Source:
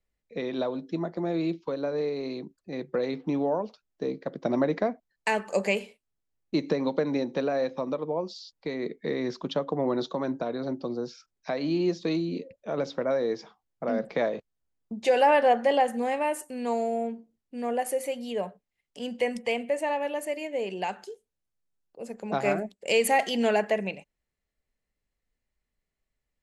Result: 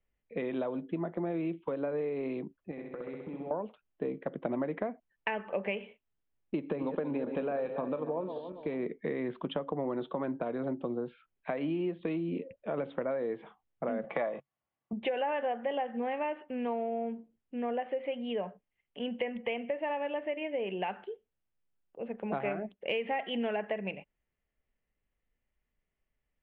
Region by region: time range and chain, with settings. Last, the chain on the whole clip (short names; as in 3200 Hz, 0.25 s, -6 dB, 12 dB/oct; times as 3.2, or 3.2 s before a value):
2.71–3.51 compressor 5:1, threshold -41 dBFS + flutter echo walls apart 11.2 m, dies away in 1.2 s
6.55–8.85 regenerating reverse delay 0.141 s, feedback 58%, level -10 dB + bell 2000 Hz -8 dB 0.25 oct
14.04–14.93 speaker cabinet 110–7300 Hz, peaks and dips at 140 Hz +7 dB, 270 Hz -6 dB, 720 Hz +9 dB, 1100 Hz +9 dB, 2000 Hz +4 dB, 5100 Hz +10 dB + comb 3.5 ms, depth 34%
whole clip: steep low-pass 3300 Hz 72 dB/oct; compressor 6:1, threshold -30 dBFS